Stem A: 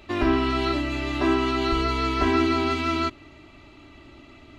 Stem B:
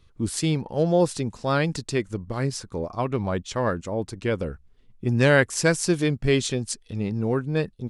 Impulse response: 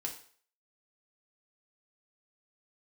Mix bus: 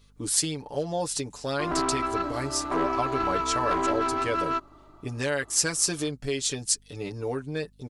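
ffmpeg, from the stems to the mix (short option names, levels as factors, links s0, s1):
-filter_complex "[0:a]highshelf=f=1700:t=q:w=3:g=-12,aeval=exprs='(tanh(6.31*val(0)+0.55)-tanh(0.55))/6.31':c=same,adelay=1500,volume=0.794[s0];[1:a]aecho=1:1:6.9:0.79,acompressor=threshold=0.0891:ratio=5,volume=0.794[s1];[s0][s1]amix=inputs=2:normalize=0,bass=f=250:g=-10,treble=f=4000:g=8,aeval=exprs='val(0)+0.00126*(sin(2*PI*50*n/s)+sin(2*PI*2*50*n/s)/2+sin(2*PI*3*50*n/s)/3+sin(2*PI*4*50*n/s)/4+sin(2*PI*5*50*n/s)/5)':c=same"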